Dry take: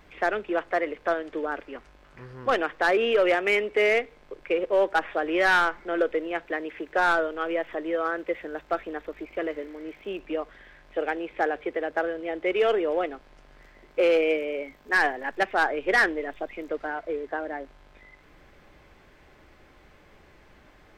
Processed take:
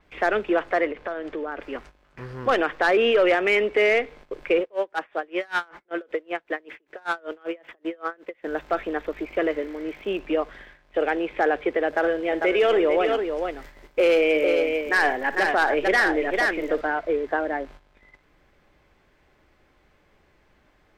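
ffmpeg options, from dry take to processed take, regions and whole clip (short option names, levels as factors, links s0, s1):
-filter_complex "[0:a]asettb=1/sr,asplit=3[s0][s1][s2];[s0]atrim=end=0.864[s3];[s1]atrim=start=0.86:end=1.62,asetpts=PTS-STARTPTS,afade=t=in:d=0.004:c=qsin,afade=t=out:st=0.756:d=0.004:c=qsin,lowpass=f=3500:p=1,acompressor=threshold=0.0224:ratio=6:attack=3.2:release=140:knee=1:detection=peak[s4];[s2]atrim=start=1.616[s5];[s3][s4]acrossfade=d=0.004:c1=hsin:c2=qsin[s6];[s6][s5]acrossfade=d=0.004:c1=qsin:c2=hsin,asettb=1/sr,asplit=3[s7][s8][s9];[s7]atrim=end=4.614[s10];[s8]atrim=start=4.61:end=8.47,asetpts=PTS-STARTPTS,afade=t=in:d=0.004:c=qsin,afade=t=out:st=3.856:d=0.004:c=qsin,highpass=f=190:p=1,acompressor=threshold=0.0398:ratio=2.5:attack=3.2:release=140:knee=1:detection=peak,aeval=exprs='val(0)*pow(10,-30*(0.5-0.5*cos(2*PI*5.2*n/s))/20)':c=same[s11];[s9]atrim=start=8.466[s12];[s10][s11]acrossfade=d=0.004:c1=hsin:c2=qsin[s13];[s13][s12]acrossfade=d=0.004:c1=qsin:c2=hsin,asettb=1/sr,asplit=3[s14][s15][s16];[s14]atrim=end=11.874[s17];[s15]atrim=start=11.87:end=16.81,asetpts=PTS-STARTPTS,afade=t=in:d=0.004:c=qsin,afade=t=out:st=4.936:d=0.004:c=qsin,highshelf=f=6600:g=8.5,aecho=1:1:58|447:0.168|0.398,atrim=end_sample=217854[s18];[s16]atrim=start=16.806[s19];[s17][s18]acrossfade=d=0.004:c1=hsin:c2=qsin[s20];[s20][s19]acrossfade=d=0.004:c1=qsin:c2=hsin,agate=range=0.224:threshold=0.00355:ratio=16:detection=peak,alimiter=limit=0.112:level=0:latency=1:release=30,adynamicequalizer=threshold=0.00282:dfrequency=6800:dqfactor=0.7:tfrequency=6800:tqfactor=0.7:attack=5:release=100:ratio=0.375:range=2.5:mode=cutabove:tftype=highshelf,volume=2.11"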